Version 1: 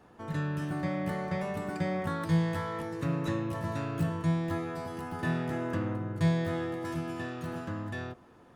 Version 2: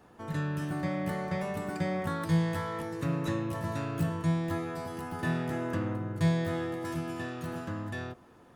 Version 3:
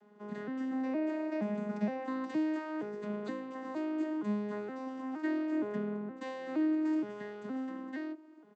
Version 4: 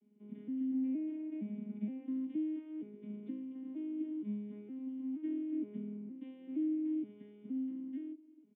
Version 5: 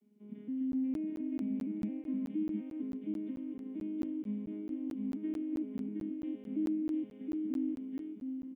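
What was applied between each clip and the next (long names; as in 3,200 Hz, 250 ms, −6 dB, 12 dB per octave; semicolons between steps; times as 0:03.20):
high-shelf EQ 7,400 Hz +5.5 dB
vocoder with an arpeggio as carrier major triad, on G#3, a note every 468 ms; comb filter 2.8 ms, depth 32%; level −2.5 dB
formant resonators in series i; level +1 dB
on a send: single-tap delay 717 ms −3.5 dB; on the sum: regular buffer underruns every 0.22 s, samples 512, zero, from 0:00.72; level +1 dB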